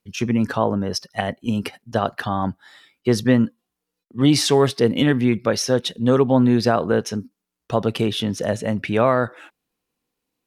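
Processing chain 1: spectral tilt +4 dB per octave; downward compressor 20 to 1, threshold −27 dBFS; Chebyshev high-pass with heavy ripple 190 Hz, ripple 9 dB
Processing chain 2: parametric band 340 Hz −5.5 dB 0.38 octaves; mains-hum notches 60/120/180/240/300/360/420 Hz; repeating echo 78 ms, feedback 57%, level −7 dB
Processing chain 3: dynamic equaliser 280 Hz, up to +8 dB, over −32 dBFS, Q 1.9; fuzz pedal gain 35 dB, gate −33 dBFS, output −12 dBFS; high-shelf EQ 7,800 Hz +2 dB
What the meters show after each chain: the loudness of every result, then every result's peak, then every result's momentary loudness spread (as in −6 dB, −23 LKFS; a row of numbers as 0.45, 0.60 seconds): −38.5, −21.0, −16.5 LKFS; −16.0, −3.5, −9.5 dBFS; 7, 12, 7 LU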